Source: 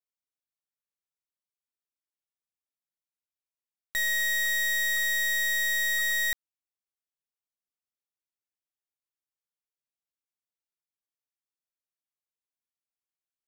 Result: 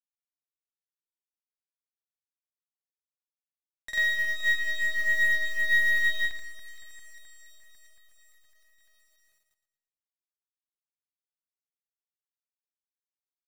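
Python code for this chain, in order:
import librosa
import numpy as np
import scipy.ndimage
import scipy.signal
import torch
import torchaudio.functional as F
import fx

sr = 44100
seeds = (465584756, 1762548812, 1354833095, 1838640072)

p1 = scipy.signal.sosfilt(scipy.signal.butter(2, 9700.0, 'lowpass', fs=sr, output='sos'), x)
p2 = fx.low_shelf(p1, sr, hz=260.0, db=-3.0)
p3 = fx.notch(p2, sr, hz=1400.0, q=6.2)
p4 = p3 + fx.echo_alternate(p3, sr, ms=194, hz=2000.0, feedback_pct=79, wet_db=-9.5, dry=0)
p5 = fx.granulator(p4, sr, seeds[0], grain_ms=198.0, per_s=20.0, spray_ms=100.0, spread_st=0)
p6 = fx.env_lowpass_down(p5, sr, base_hz=2900.0, full_db=-29.0)
p7 = fx.quant_companded(p6, sr, bits=6)
p8 = fx.echo_feedback(p7, sr, ms=114, feedback_pct=47, wet_db=-12)
p9 = fx.upward_expand(p8, sr, threshold_db=-40.0, expansion=1.5)
y = p9 * librosa.db_to_amplitude(7.0)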